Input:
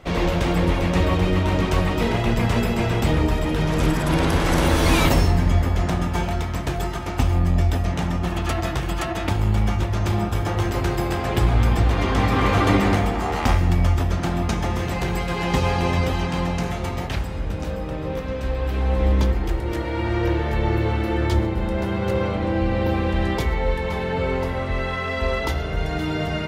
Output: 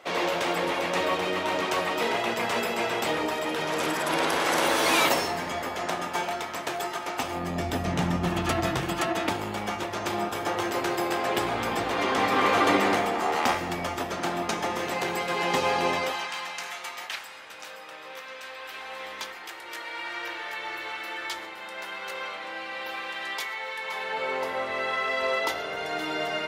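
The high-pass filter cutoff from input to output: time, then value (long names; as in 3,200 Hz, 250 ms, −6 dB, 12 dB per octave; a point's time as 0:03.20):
0:07.20 490 Hz
0:07.95 130 Hz
0:08.65 130 Hz
0:09.53 370 Hz
0:15.92 370 Hz
0:16.34 1,300 Hz
0:23.72 1,300 Hz
0:24.56 510 Hz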